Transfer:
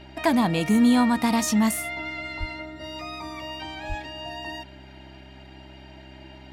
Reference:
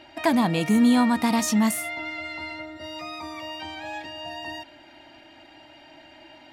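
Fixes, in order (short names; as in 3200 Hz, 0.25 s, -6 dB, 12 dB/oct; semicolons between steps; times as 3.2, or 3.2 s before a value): de-hum 65.5 Hz, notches 6; 2.39–2.51 HPF 140 Hz 24 dB/oct; 3.88–4 HPF 140 Hz 24 dB/oct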